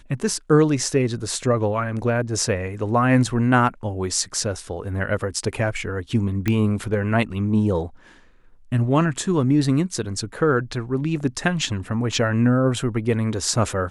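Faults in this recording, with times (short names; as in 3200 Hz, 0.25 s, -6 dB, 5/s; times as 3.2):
6.48 pop -9 dBFS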